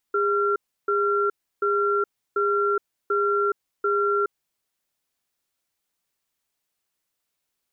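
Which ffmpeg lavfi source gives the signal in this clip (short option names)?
-f lavfi -i "aevalsrc='0.0794*(sin(2*PI*406*t)+sin(2*PI*1370*t))*clip(min(mod(t,0.74),0.42-mod(t,0.74))/0.005,0,1)':d=4.41:s=44100"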